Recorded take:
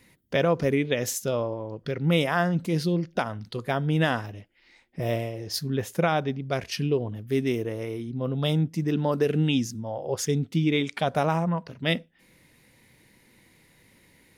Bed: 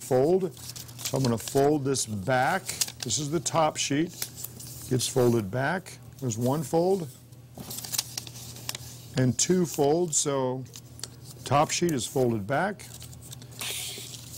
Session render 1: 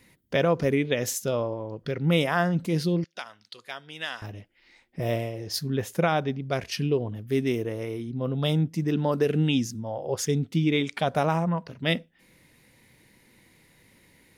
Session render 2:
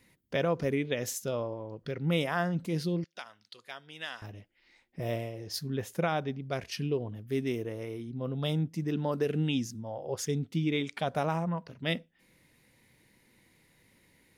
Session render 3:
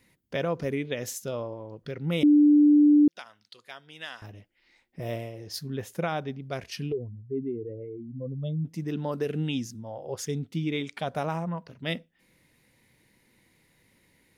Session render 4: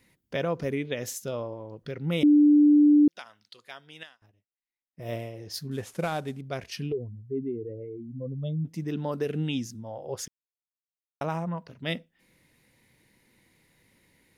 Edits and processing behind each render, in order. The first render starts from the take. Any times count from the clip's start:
3.04–4.22 band-pass 4700 Hz, Q 0.69
gain -6 dB
2.23–3.08 bleep 295 Hz -14 dBFS; 6.92–8.65 spectral contrast raised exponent 2.2
4.03–5.12 upward expander 2.5:1, over -54 dBFS; 5.71–6.41 CVSD 64 kbps; 10.28–11.21 mute

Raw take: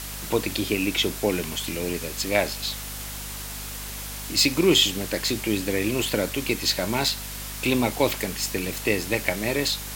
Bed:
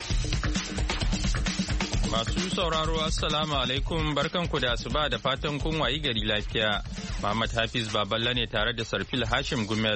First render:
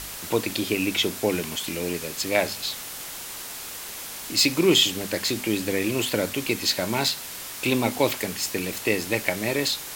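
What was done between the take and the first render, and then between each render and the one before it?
de-hum 50 Hz, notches 5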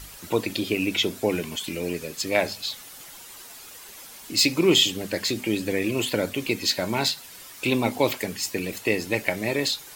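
denoiser 10 dB, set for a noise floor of -37 dBFS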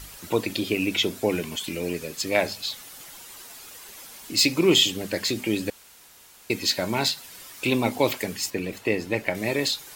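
5.7–6.5 room tone; 8.5–9.35 high shelf 3800 Hz -9.5 dB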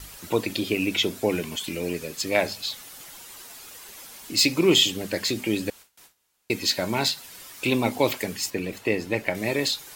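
gate with hold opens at -39 dBFS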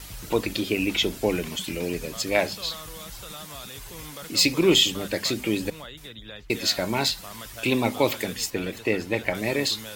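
add bed -14.5 dB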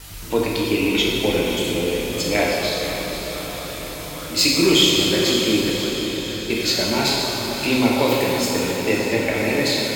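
diffused feedback echo 0.553 s, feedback 63%, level -9 dB; plate-style reverb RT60 2.8 s, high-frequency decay 0.75×, DRR -4 dB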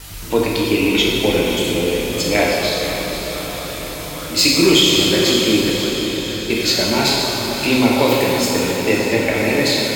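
gain +3.5 dB; limiter -2 dBFS, peak gain reduction 2.5 dB

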